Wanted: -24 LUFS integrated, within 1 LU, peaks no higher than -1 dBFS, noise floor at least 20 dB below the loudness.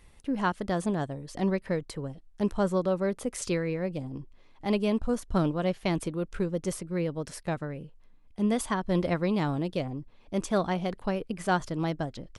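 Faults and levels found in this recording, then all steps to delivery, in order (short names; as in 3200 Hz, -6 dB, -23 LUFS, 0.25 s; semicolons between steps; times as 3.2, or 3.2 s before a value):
loudness -30.0 LUFS; peak -14.0 dBFS; loudness target -24.0 LUFS
-> gain +6 dB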